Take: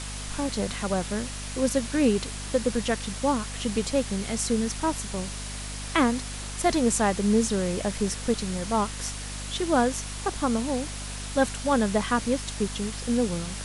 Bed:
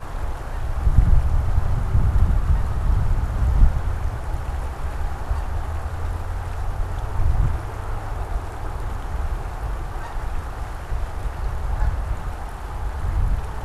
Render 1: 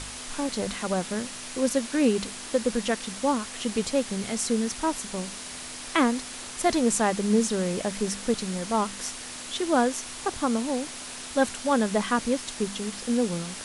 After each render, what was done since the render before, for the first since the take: de-hum 50 Hz, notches 4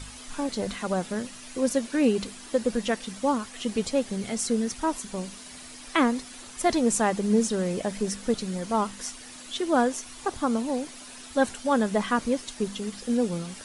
noise reduction 9 dB, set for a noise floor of -39 dBFS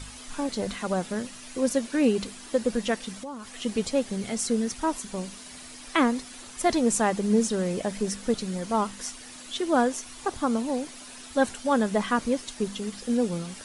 3.22–3.62 s: compression 4:1, threshold -36 dBFS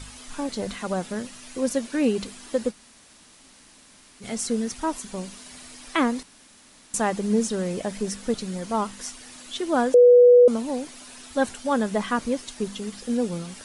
2.71–4.23 s: room tone, crossfade 0.06 s; 6.23–6.94 s: room tone; 9.94–10.48 s: bleep 489 Hz -9 dBFS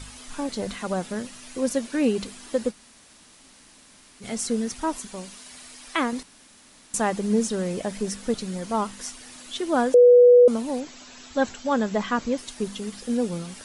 5.07–6.13 s: bass shelf 500 Hz -6 dB; 10.80–12.38 s: brick-wall FIR low-pass 7.9 kHz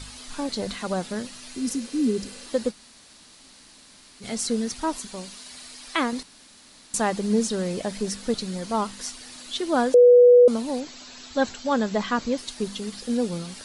1.59–2.43 s: spectral replace 440–4700 Hz before; peaking EQ 4.3 kHz +6.5 dB 0.52 oct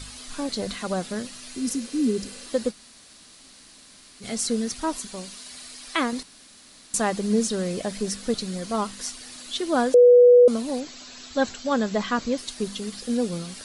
treble shelf 8.8 kHz +4 dB; band-stop 890 Hz, Q 12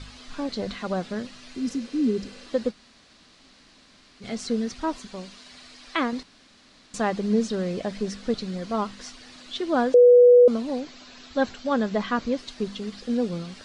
distance through air 140 m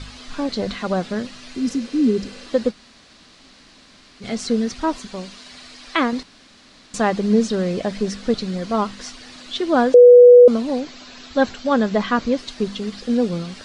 trim +6 dB

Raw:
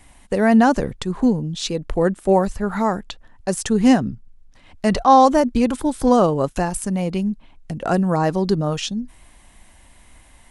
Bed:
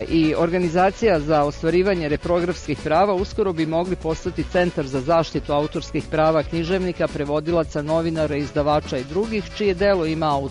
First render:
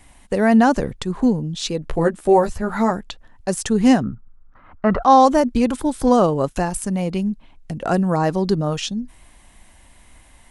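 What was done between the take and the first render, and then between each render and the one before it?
1.82–2.91 s: doubling 13 ms -4 dB; 4.03–5.03 s: resonant low-pass 1.3 kHz, resonance Q 6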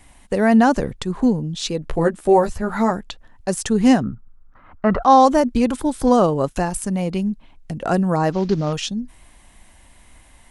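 8.32–8.73 s: CVSD coder 32 kbps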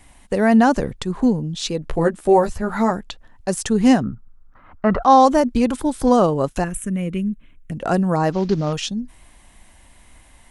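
6.64–7.72 s: static phaser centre 2 kHz, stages 4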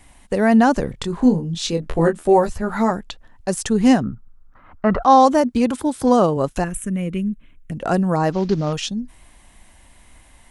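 0.91–2.24 s: doubling 24 ms -5.5 dB; 5.06–6.37 s: high-pass 67 Hz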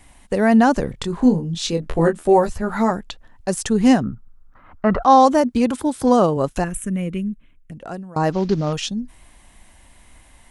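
6.99–8.16 s: fade out, to -23.5 dB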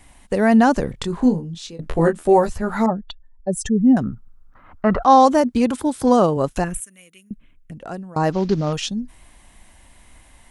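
1.16–1.79 s: fade out, to -19.5 dB; 2.86–3.97 s: spectral contrast enhancement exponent 2; 6.80–7.31 s: differentiator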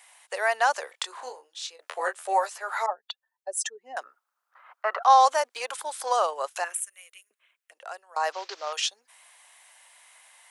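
Bessel high-pass 990 Hz, order 8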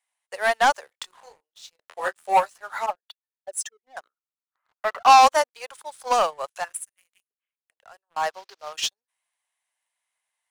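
waveshaping leveller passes 3; upward expansion 2.5:1, over -24 dBFS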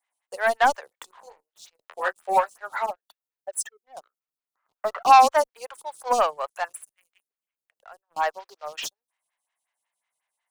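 in parallel at -7.5 dB: saturation -23.5 dBFS, distortion -5 dB; on the sum: lamp-driven phase shifter 5.5 Hz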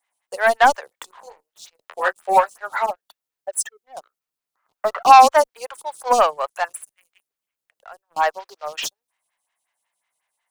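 trim +5.5 dB; peak limiter -1 dBFS, peak gain reduction 1.5 dB

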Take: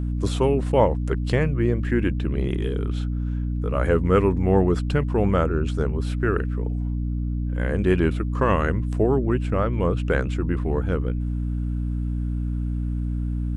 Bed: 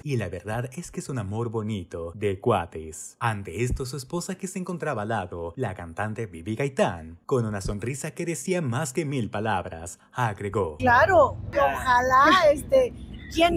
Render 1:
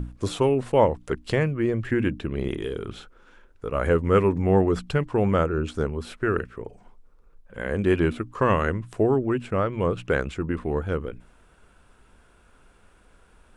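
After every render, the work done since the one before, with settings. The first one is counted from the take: hum notches 60/120/180/240/300 Hz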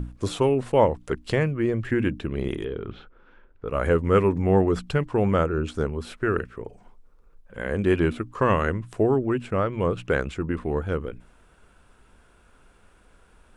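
2.64–3.68 s: distance through air 290 m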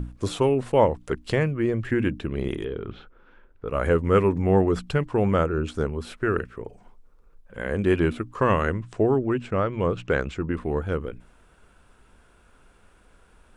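8.83–10.54 s: low-pass 7.8 kHz 24 dB/octave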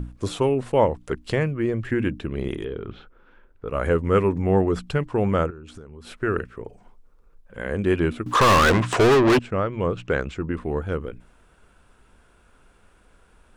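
5.50–6.11 s: compression 20:1, threshold -36 dBFS; 8.26–9.39 s: overdrive pedal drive 35 dB, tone 6 kHz, clips at -9.5 dBFS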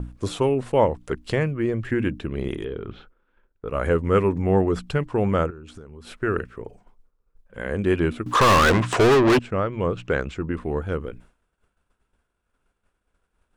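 expander -43 dBFS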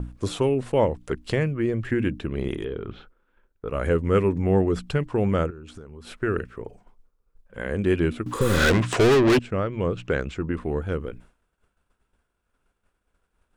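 8.36–8.62 s: spectral replace 540–7800 Hz both; dynamic bell 980 Hz, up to -5 dB, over -33 dBFS, Q 0.99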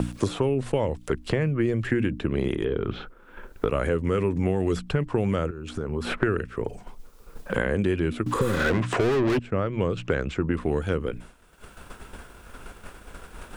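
peak limiter -14.5 dBFS, peak gain reduction 7 dB; three bands compressed up and down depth 100%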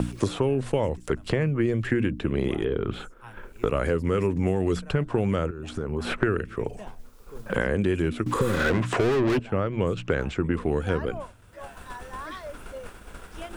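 add bed -21 dB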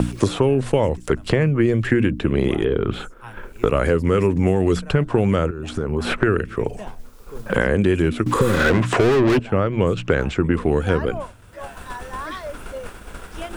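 trim +6.5 dB; peak limiter -2 dBFS, peak gain reduction 2 dB

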